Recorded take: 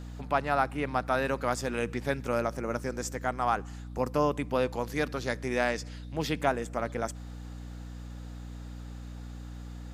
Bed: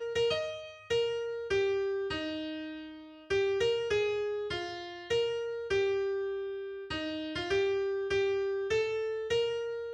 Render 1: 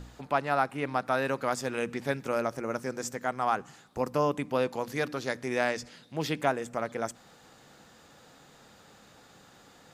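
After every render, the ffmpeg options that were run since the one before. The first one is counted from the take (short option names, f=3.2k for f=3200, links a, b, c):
-af "bandreject=f=60:t=h:w=4,bandreject=f=120:t=h:w=4,bandreject=f=180:t=h:w=4,bandreject=f=240:t=h:w=4,bandreject=f=300:t=h:w=4"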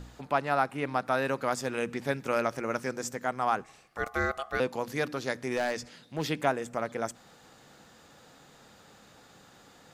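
-filter_complex "[0:a]asettb=1/sr,asplit=3[a][b][c];[a]atrim=end=2.284[d];[b]atrim=start=2.28:end=2.92,asetpts=PTS-STARTPTS,afade=t=in:d=0.004:c=qsin,afade=t=out:st=0.636:d=0.004:c=qsin,equalizer=f=2.5k:w=0.65:g=5.5[e];[c]atrim=start=2.916[f];[d][e]acrossfade=d=0.004:c1=hsin:c2=qsin[g];[g][f]acrossfade=d=0.004:c1=qsin:c2=hsin,asettb=1/sr,asplit=3[h][i][j];[h]atrim=end=3.644[k];[i]atrim=start=3.64:end=4.6,asetpts=PTS-STARTPTS,afade=t=in:d=0.004:c=qsin,afade=t=out:st=0.956:d=0.004:c=qsin,aeval=exprs='val(0)*sin(2*PI*950*n/s)':c=same[l];[j]atrim=start=4.596[m];[k][l]acrossfade=d=0.004:c1=hsin:c2=qsin[n];[n][m]acrossfade=d=0.004:c1=qsin:c2=hsin,asettb=1/sr,asplit=3[o][p][q];[o]atrim=end=5.504[r];[p]atrim=start=5.5:end=6.23,asetpts=PTS-STARTPTS,afade=t=in:d=0.004:c=qsin,afade=t=out:st=0.726:d=0.004:c=qsin,asoftclip=type=hard:threshold=-23.5dB[s];[q]atrim=start=6.226[t];[r][s]acrossfade=d=0.004:c1=hsin:c2=qsin[u];[u][t]acrossfade=d=0.004:c1=qsin:c2=hsin"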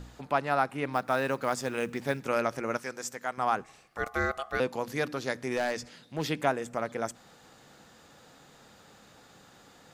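-filter_complex "[0:a]asettb=1/sr,asplit=3[a][b][c];[a]atrim=end=0.934[d];[b]atrim=start=0.93:end=2.2,asetpts=PTS-STARTPTS,afade=t=in:d=0.004:c=qsin,afade=t=out:st=1.266:d=0.004:c=qsin,acrusher=bits=7:mode=log:mix=0:aa=0.000001[e];[c]atrim=start=2.196[f];[d][e]acrossfade=d=0.004:c1=hsin:c2=qsin[g];[g][f]acrossfade=d=0.004:c1=qsin:c2=hsin,asettb=1/sr,asplit=3[h][i][j];[h]atrim=end=2.774[k];[i]atrim=start=2.77:end=3.38,asetpts=PTS-STARTPTS,afade=t=in:d=0.004:c=qsin,afade=t=out:st=0.606:d=0.004:c=qsin,lowshelf=f=480:g=-10.5[l];[j]atrim=start=3.376[m];[k][l]acrossfade=d=0.004:c1=hsin:c2=qsin[n];[n][m]acrossfade=d=0.004:c1=qsin:c2=hsin"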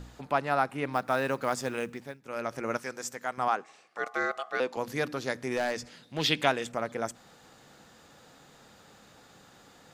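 -filter_complex "[0:a]asettb=1/sr,asplit=3[a][b][c];[a]atrim=end=3.484[d];[b]atrim=start=3.48:end=4.77,asetpts=PTS-STARTPTS,afade=t=in:d=0.004:c=qsin,afade=t=out:st=1.286:d=0.004:c=qsin,highpass=310,lowpass=7.8k[e];[c]atrim=start=4.766[f];[d][e]acrossfade=d=0.004:c1=hsin:c2=qsin[g];[g][f]acrossfade=d=0.004:c1=qsin:c2=hsin,asettb=1/sr,asplit=3[h][i][j];[h]atrim=end=6.164[k];[i]atrim=start=6.16:end=6.72,asetpts=PTS-STARTPTS,afade=t=in:d=0.004:c=qsin,afade=t=out:st=0.556:d=0.004:c=qsin,equalizer=f=3.4k:w=0.99:g=12.5[l];[j]atrim=start=6.716[m];[k][l]acrossfade=d=0.004:c1=hsin:c2=qsin[n];[n][m]acrossfade=d=0.004:c1=qsin:c2=hsin,asplit=3[o][p][q];[o]atrim=end=2.18,asetpts=PTS-STARTPTS,afade=t=out:st=1.71:d=0.47:silence=0.105925[r];[p]atrim=start=2.18:end=2.2,asetpts=PTS-STARTPTS,volume=-19.5dB[s];[q]atrim=start=2.2,asetpts=PTS-STARTPTS,afade=t=in:d=0.47:silence=0.105925[t];[r][s][t]concat=n=3:v=0:a=1"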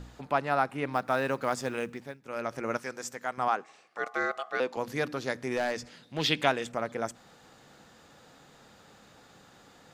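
-af "highshelf=f=6.9k:g=-4"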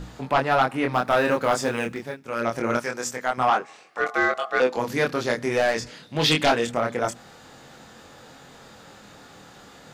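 -af "flanger=delay=22.5:depth=4.1:speed=0.25,aeval=exprs='0.237*sin(PI/2*2.51*val(0)/0.237)':c=same"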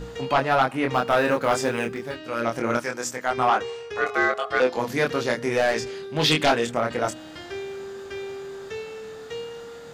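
-filter_complex "[1:a]volume=-4.5dB[a];[0:a][a]amix=inputs=2:normalize=0"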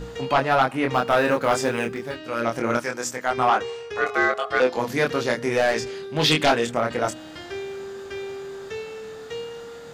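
-af "volume=1dB"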